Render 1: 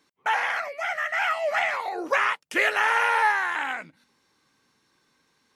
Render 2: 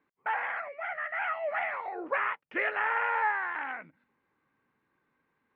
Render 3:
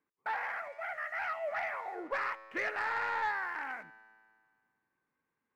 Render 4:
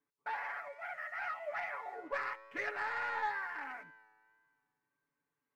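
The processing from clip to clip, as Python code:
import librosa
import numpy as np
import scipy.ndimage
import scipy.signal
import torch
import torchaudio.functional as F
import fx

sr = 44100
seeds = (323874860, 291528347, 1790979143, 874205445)

y1 = scipy.signal.sosfilt(scipy.signal.butter(4, 2300.0, 'lowpass', fs=sr, output='sos'), x)
y1 = y1 * librosa.db_to_amplitude(-6.5)
y2 = fx.leveller(y1, sr, passes=1)
y2 = fx.comb_fb(y2, sr, f0_hz=110.0, decay_s=1.9, harmonics='all', damping=0.0, mix_pct=60)
y3 = fx.wow_flutter(y2, sr, seeds[0], rate_hz=2.1, depth_cents=26.0)
y3 = y3 + 0.84 * np.pad(y3, (int(7.0 * sr / 1000.0), 0))[:len(y3)]
y3 = y3 * librosa.db_to_amplitude(-6.0)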